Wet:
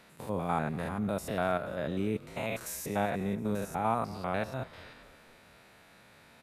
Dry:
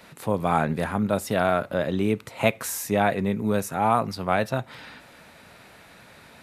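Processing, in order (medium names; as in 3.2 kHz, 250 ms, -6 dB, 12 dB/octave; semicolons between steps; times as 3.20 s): spectrogram pixelated in time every 100 ms; frequency-shifting echo 239 ms, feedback 55%, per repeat -46 Hz, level -20 dB; trim -7 dB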